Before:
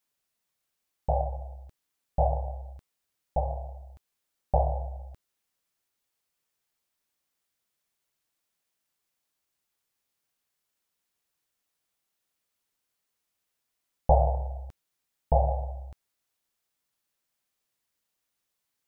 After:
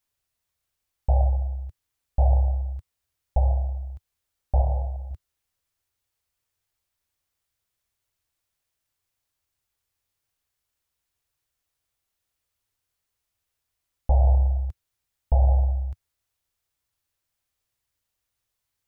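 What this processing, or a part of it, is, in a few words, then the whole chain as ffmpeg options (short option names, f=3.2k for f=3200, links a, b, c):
car stereo with a boomy subwoofer: -filter_complex "[0:a]lowshelf=f=130:t=q:w=1.5:g=10.5,alimiter=limit=-12dB:level=0:latency=1:release=78,asettb=1/sr,asplit=3[a][b][c];[a]atrim=end=4.594[d];[b]atrim=start=4.59:end=5.11,asetpts=PTS-STARTPTS,afade=t=in:d=0.004:c=qsin,afade=t=out:st=0.516:d=0.004:c=qsin,asplit=2[e][f];[f]adelay=22,volume=-6.5dB[g];[e][g]amix=inputs=2:normalize=0,atrim=end_sample=22932[h];[c]atrim=start=5.106[i];[d][h]acrossfade=d=0.004:c1=hsin:c2=qsin[j];[j][i]acrossfade=d=0.004:c1=qsin:c2=hsin"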